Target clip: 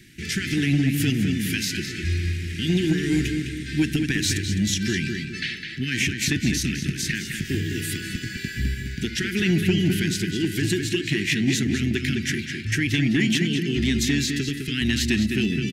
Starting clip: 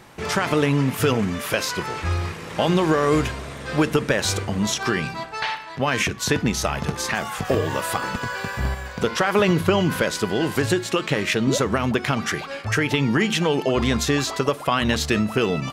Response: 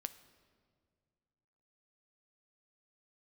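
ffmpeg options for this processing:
-filter_complex "[0:a]asuperstop=centerf=780:order=12:qfactor=0.58,asplit=2[a][b];[b]adelay=207,lowpass=f=3.8k:p=1,volume=-5dB,asplit=2[c][d];[d]adelay=207,lowpass=f=3.8k:p=1,volume=0.43,asplit=2[e][f];[f]adelay=207,lowpass=f=3.8k:p=1,volume=0.43,asplit=2[g][h];[h]adelay=207,lowpass=f=3.8k:p=1,volume=0.43,asplit=2[i][j];[j]adelay=207,lowpass=f=3.8k:p=1,volume=0.43[k];[a][c][e][g][i][k]amix=inputs=6:normalize=0,acontrast=62,volume=-6.5dB"

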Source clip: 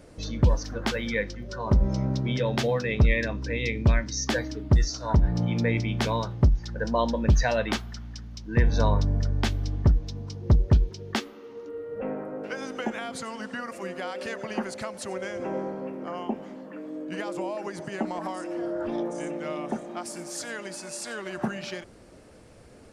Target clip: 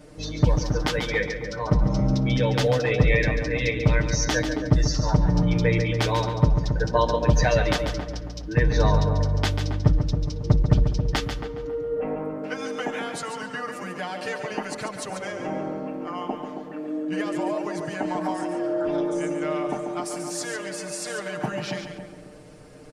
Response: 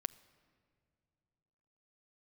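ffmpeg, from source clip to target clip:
-filter_complex "[0:a]aecho=1:1:6.6:0.96,asplit=2[a][b];[b]adelay=274,lowpass=f=910:p=1,volume=-6.5dB,asplit=2[c][d];[d]adelay=274,lowpass=f=910:p=1,volume=0.42,asplit=2[e][f];[f]adelay=274,lowpass=f=910:p=1,volume=0.42,asplit=2[g][h];[h]adelay=274,lowpass=f=910:p=1,volume=0.42,asplit=2[i][j];[j]adelay=274,lowpass=f=910:p=1,volume=0.42[k];[a][c][e][g][i][k]amix=inputs=6:normalize=0,asplit=2[l][m];[1:a]atrim=start_sample=2205,adelay=141[n];[m][n]afir=irnorm=-1:irlink=0,volume=-6.5dB[o];[l][o]amix=inputs=2:normalize=0"

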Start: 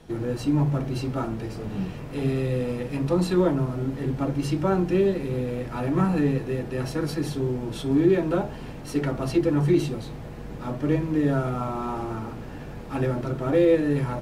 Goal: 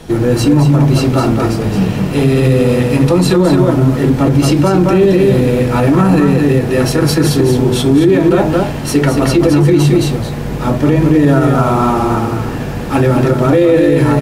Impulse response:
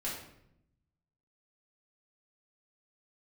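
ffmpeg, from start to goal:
-af "highshelf=f=5k:g=5,aecho=1:1:220:0.562,alimiter=level_in=17dB:limit=-1dB:release=50:level=0:latency=1,volume=-1dB"

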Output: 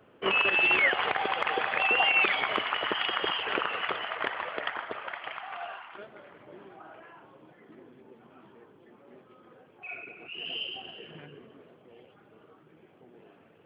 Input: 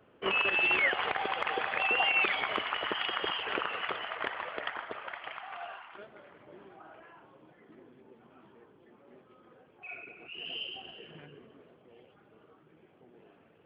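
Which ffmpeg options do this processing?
-af "equalizer=f=61:t=o:w=0.31:g=-13,volume=3.5dB"

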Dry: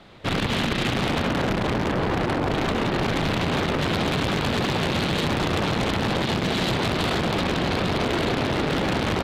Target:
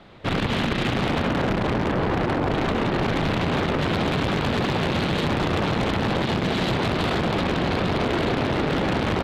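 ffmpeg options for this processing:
-af "highshelf=f=4.4k:g=-8.5,volume=1dB"

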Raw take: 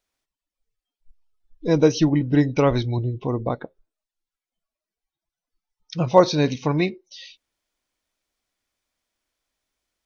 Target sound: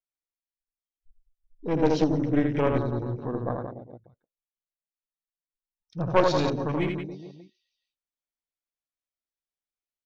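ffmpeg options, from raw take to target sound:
-af "aecho=1:1:80|176|291.2|429.4|595.3:0.631|0.398|0.251|0.158|0.1,aeval=exprs='0.891*(cos(1*acos(clip(val(0)/0.891,-1,1)))-cos(1*PI/2))+0.282*(cos(4*acos(clip(val(0)/0.891,-1,1)))-cos(4*PI/2))+0.0631*(cos(5*acos(clip(val(0)/0.891,-1,1)))-cos(5*PI/2))+0.0398*(cos(6*acos(clip(val(0)/0.891,-1,1)))-cos(6*PI/2))':c=same,afwtdn=0.0355,volume=-9dB"

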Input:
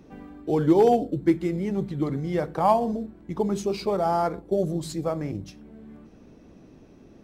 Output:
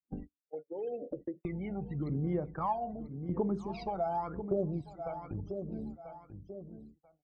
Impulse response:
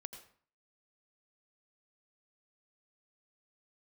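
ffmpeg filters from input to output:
-filter_complex "[0:a]asettb=1/sr,asplit=3[a][b][c];[a]atrim=end=0.424[d];[b]atrim=start=0.42:end=1.45,asetpts=PTS-STARTPTS,afade=t=in:d=0.004:c=qsin,afade=t=out:st=1.026:d=0.004:c=qsin,asplit=3[e][f][g];[e]bandpass=f=530:t=q:w=8,volume=0dB[h];[f]bandpass=f=1.84k:t=q:w=8,volume=-6dB[i];[g]bandpass=f=2.48k:t=q:w=8,volume=-9dB[j];[h][i][j]amix=inputs=3:normalize=0[k];[c]atrim=start=1.446[l];[d][k]acrossfade=d=0.004:c1=hsin:c2=qsin[m];[m][l]acrossfade=d=0.004:c1=qsin:c2=hsin,asettb=1/sr,asplit=3[n][o][p];[n]atrim=end=3.664[q];[o]atrim=start=3.66:end=4.18,asetpts=PTS-STARTPTS,afade=t=in:d=0.004:c=qsin,afade=t=out:st=0.516:d=0.004:c=qsin,aecho=1:1:6.2:0.43,atrim=end_sample=22932[r];[p]atrim=start=4.176[s];[q][r]acrossfade=d=0.004:c1=hsin:c2=qsin[t];[t][s]acrossfade=d=0.004:c1=qsin:c2=hsin,aphaser=in_gain=1:out_gain=1:delay=1.4:decay=0.75:speed=0.87:type=sinusoidal,asettb=1/sr,asplit=3[u][v][w];[u]atrim=end=4.814[x];[v]atrim=start=4.81:end=5.31,asetpts=PTS-STARTPTS,afade=t=in:d=0.004:c=qsin,afade=t=out:st=0.496:d=0.004:c=qsin,acrossover=split=590|2300[y][z][aa];[y]acompressor=threshold=-38dB:ratio=4[ab];[z]acompressor=threshold=-33dB:ratio=4[ac];[aa]acompressor=threshold=-45dB:ratio=4[ad];[ab][ac][ad]amix=inputs=3:normalize=0[ae];[w]atrim=start=5.306[af];[x][ae]acrossfade=d=0.004:c1=hsin:c2=qsin[ag];[ag][af]acrossfade=d=0.004:c1=qsin:c2=hsin,highshelf=f=2.9k:g=-10,agate=range=-42dB:threshold=-35dB:ratio=16:detection=peak,afftdn=nr=36:nf=-47,highshelf=f=6.8k:g=-5.5,aecho=1:1:989|1978:0.119|0.0202,acompressor=threshold=-42dB:ratio=2.5,volume=2dB" -ar 22050 -c:a aac -b:a 48k

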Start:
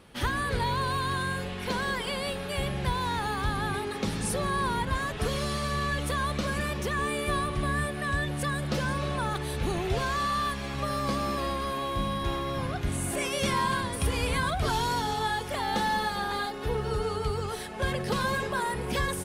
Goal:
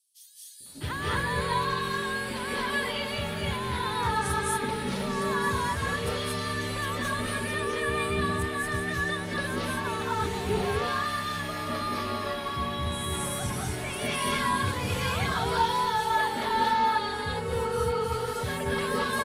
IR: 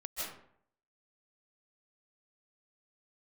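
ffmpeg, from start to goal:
-filter_complex "[0:a]acrossover=split=460|5600[a][b][c];[a]adelay=600[d];[b]adelay=660[e];[d][e][c]amix=inputs=3:normalize=0,afreqshift=30[f];[1:a]atrim=start_sample=2205,afade=t=out:st=0.22:d=0.01,atrim=end_sample=10143,asetrate=30429,aresample=44100[g];[f][g]afir=irnorm=-1:irlink=0"

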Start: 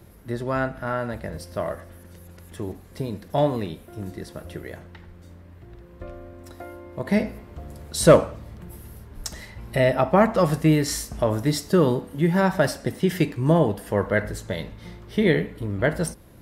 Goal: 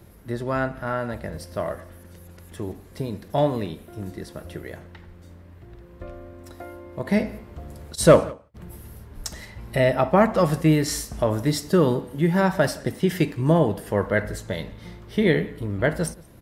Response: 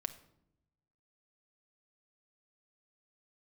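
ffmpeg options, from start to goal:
-filter_complex "[0:a]asplit=3[a][b][c];[a]afade=t=out:st=7.94:d=0.02[d];[b]agate=range=-33dB:threshold=-27dB:ratio=16:detection=peak,afade=t=in:st=7.94:d=0.02,afade=t=out:st=8.54:d=0.02[e];[c]afade=t=in:st=8.54:d=0.02[f];[d][e][f]amix=inputs=3:normalize=0,asplit=2[g][h];[h]adelay=174.9,volume=-23dB,highshelf=f=4k:g=-3.94[i];[g][i]amix=inputs=2:normalize=0"

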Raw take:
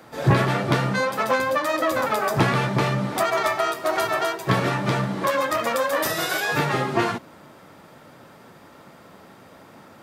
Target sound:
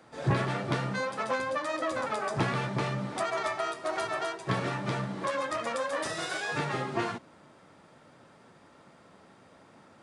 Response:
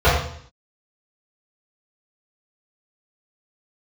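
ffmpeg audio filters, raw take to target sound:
-af "aresample=22050,aresample=44100,volume=-9dB"

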